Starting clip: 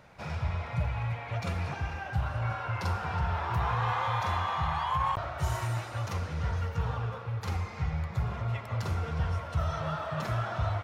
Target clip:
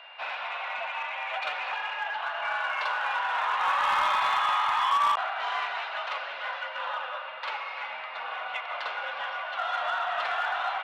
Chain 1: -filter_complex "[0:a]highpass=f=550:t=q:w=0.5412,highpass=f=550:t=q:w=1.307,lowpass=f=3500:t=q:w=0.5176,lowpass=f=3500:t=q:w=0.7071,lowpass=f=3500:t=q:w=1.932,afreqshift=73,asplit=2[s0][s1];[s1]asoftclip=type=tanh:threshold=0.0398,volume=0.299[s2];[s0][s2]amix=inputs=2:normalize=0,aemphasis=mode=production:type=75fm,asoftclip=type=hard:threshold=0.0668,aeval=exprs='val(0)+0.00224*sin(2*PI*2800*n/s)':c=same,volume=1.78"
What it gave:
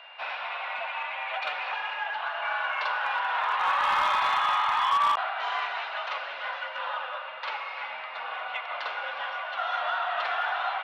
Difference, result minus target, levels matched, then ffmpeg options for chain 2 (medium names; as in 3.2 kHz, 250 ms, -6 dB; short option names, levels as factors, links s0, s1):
saturation: distortion -6 dB
-filter_complex "[0:a]highpass=f=550:t=q:w=0.5412,highpass=f=550:t=q:w=1.307,lowpass=f=3500:t=q:w=0.5176,lowpass=f=3500:t=q:w=0.7071,lowpass=f=3500:t=q:w=1.932,afreqshift=73,asplit=2[s0][s1];[s1]asoftclip=type=tanh:threshold=0.0188,volume=0.299[s2];[s0][s2]amix=inputs=2:normalize=0,aemphasis=mode=production:type=75fm,asoftclip=type=hard:threshold=0.0668,aeval=exprs='val(0)+0.00224*sin(2*PI*2800*n/s)':c=same,volume=1.78"